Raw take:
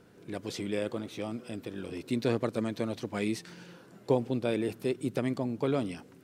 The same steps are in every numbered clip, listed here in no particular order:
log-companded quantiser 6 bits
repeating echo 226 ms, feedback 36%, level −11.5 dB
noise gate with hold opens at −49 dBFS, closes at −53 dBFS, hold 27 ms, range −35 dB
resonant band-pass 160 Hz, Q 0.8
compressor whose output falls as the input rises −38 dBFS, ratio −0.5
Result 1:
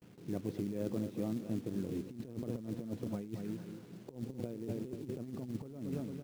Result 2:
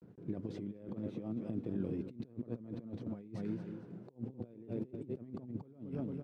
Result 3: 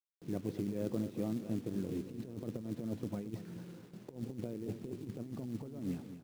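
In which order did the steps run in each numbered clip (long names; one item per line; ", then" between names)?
resonant band-pass, then log-companded quantiser, then repeating echo, then compressor whose output falls as the input rises, then noise gate with hold
noise gate with hold, then log-companded quantiser, then repeating echo, then compressor whose output falls as the input rises, then resonant band-pass
resonant band-pass, then noise gate with hold, then log-companded quantiser, then compressor whose output falls as the input rises, then repeating echo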